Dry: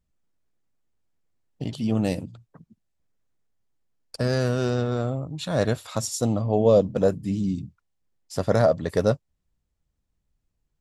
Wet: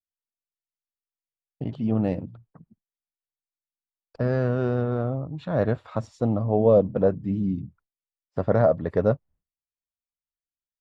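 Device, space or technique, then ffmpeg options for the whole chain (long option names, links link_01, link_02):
hearing-loss simulation: -af "lowpass=1600,agate=range=-33dB:threshold=-49dB:ratio=3:detection=peak"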